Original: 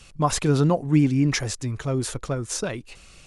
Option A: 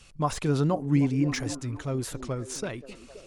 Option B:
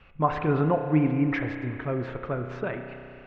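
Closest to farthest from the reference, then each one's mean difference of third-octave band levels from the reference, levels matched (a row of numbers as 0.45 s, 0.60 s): A, B; 2.5 dB, 9.0 dB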